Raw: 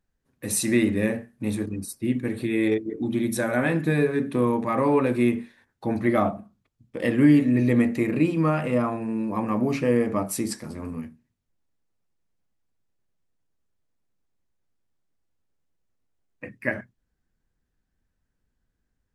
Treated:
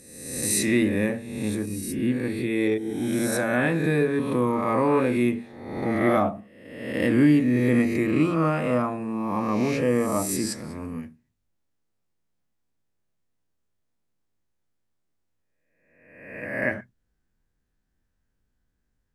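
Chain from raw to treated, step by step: spectral swells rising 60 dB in 1.03 s; gain -2 dB

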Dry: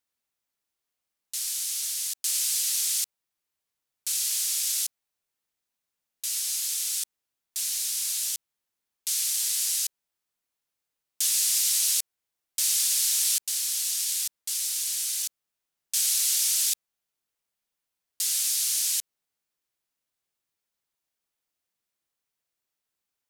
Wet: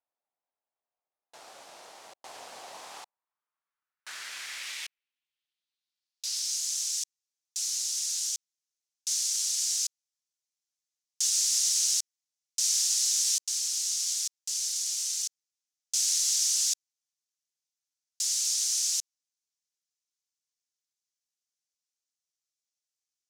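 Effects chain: half-waves squared off; band-pass sweep 720 Hz -> 6100 Hz, 2.66–6.61

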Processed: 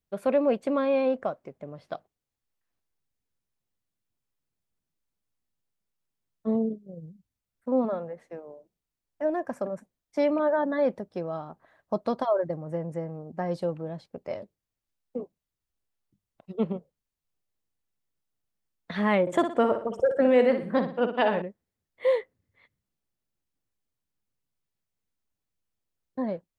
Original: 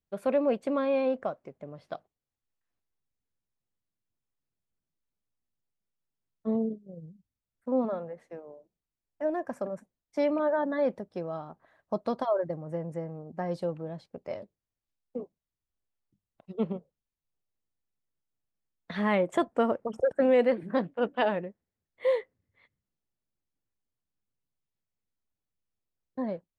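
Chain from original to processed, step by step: 19.21–21.42 flutter echo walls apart 10.1 m, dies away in 0.42 s; gain +2.5 dB

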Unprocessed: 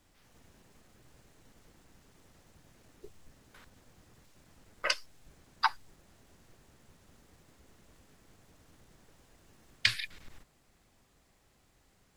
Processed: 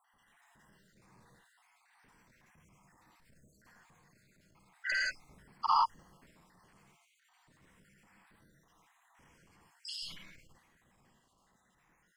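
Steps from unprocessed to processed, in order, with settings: random spectral dropouts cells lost 76%; graphic EQ 1000/2000/8000 Hz +10/+10/+4 dB; reverb, pre-delay 45 ms, DRR -0.5 dB; transient shaper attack -12 dB, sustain +3 dB; bell 180 Hz +9 dB 1.3 oct; gain -6 dB

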